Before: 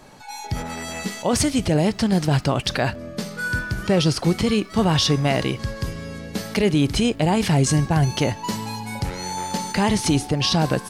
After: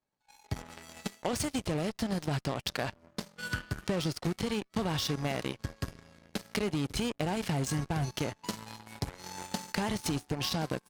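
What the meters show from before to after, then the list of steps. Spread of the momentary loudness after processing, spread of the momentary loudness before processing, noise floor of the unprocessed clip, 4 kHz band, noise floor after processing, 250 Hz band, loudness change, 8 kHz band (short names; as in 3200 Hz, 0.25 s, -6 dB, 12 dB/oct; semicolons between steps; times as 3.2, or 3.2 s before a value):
10 LU, 11 LU, -38 dBFS, -12.0 dB, -70 dBFS, -13.0 dB, -12.5 dB, -12.0 dB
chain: added harmonics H 7 -17 dB, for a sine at -9.5 dBFS; compressor, threshold -24 dBFS, peak gain reduction 10 dB; gain -4.5 dB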